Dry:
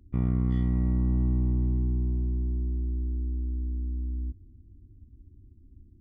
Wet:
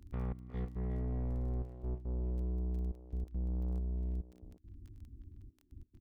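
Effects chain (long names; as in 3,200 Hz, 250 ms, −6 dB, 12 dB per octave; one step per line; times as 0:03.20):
0:03.32–0:03.79: low-shelf EQ 200 Hz +7 dB
gate pattern "xxx..x.xxxxx" 139 BPM −24 dB
soft clipping −33.5 dBFS, distortion −6 dB
surface crackle 11 per second −48 dBFS
0:00.50–0:02.27: tuned comb filter 62 Hz, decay 0.17 s, harmonics all, mix 70%
far-end echo of a speakerphone 360 ms, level −7 dB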